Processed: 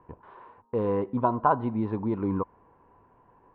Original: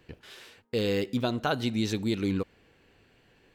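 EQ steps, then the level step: synth low-pass 1000 Hz, resonance Q 12; air absorption 260 m; 0.0 dB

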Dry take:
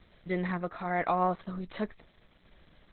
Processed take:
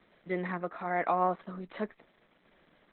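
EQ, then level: three-band isolator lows -18 dB, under 180 Hz, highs -14 dB, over 3200 Hz; 0.0 dB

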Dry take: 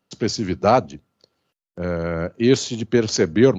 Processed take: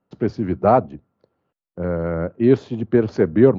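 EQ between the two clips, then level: LPF 1300 Hz 12 dB/oct; +1.5 dB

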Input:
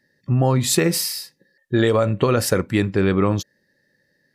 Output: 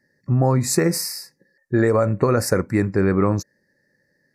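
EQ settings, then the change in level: Butterworth band-stop 3200 Hz, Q 1.2; high shelf 12000 Hz -6.5 dB; 0.0 dB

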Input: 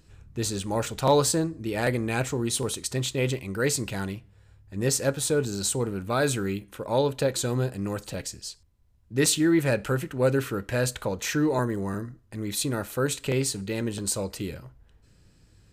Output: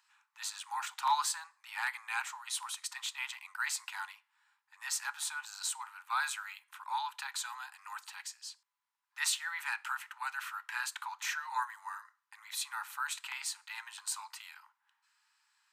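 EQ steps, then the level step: steep high-pass 850 Hz 96 dB/oct; high shelf 2500 Hz -9.5 dB; 0.0 dB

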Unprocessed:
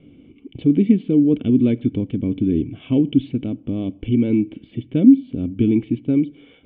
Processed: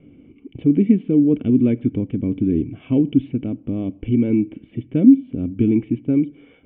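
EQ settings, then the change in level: LPF 2600 Hz 24 dB/oct; 0.0 dB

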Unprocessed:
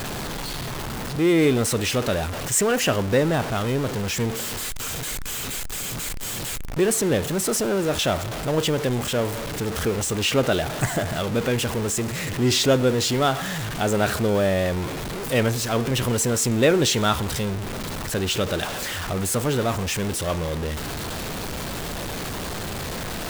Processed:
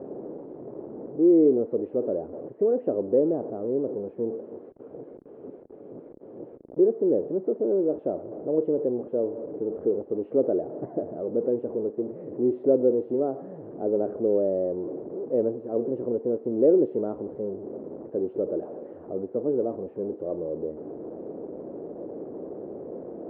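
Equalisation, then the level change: Butterworth band-pass 420 Hz, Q 1.5; air absorption 280 m; tilt -3 dB/oct; -2.0 dB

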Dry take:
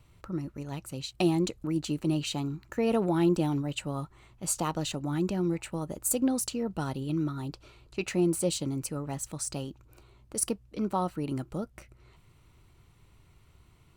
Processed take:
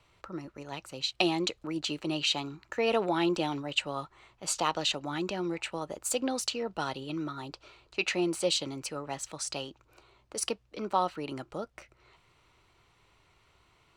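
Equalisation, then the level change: three-band isolator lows -14 dB, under 400 Hz, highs -15 dB, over 6900 Hz; dynamic EQ 3300 Hz, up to +6 dB, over -51 dBFS, Q 0.84; +3.0 dB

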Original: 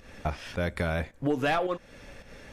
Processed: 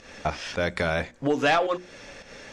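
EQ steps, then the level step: synth low-pass 6500 Hz, resonance Q 1.6; low shelf 140 Hz -11.5 dB; notches 60/120/180/240/300/360 Hz; +5.5 dB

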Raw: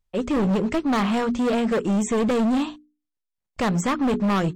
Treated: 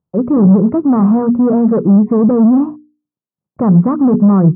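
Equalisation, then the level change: Chebyshev band-pass 140–1200 Hz, order 3; tilt -3 dB/oct; low shelf 170 Hz +10 dB; +3.5 dB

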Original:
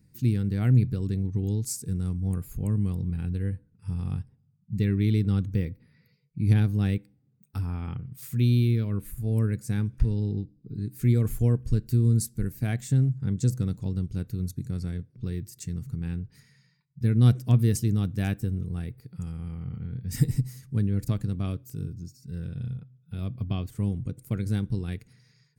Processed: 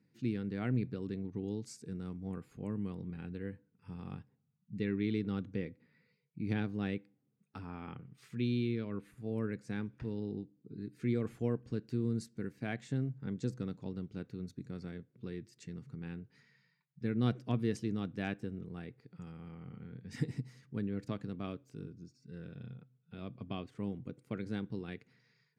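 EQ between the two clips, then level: BPF 250–3300 Hz; -3.0 dB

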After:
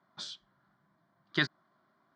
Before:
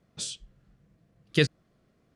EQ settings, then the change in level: speaker cabinet 270–3800 Hz, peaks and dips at 400 Hz +9 dB, 610 Hz +4 dB, 980 Hz +9 dB, 1500 Hz +4 dB, 2600 Hz +7 dB; high shelf 2100 Hz +8.5 dB; fixed phaser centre 1100 Hz, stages 4; 0.0 dB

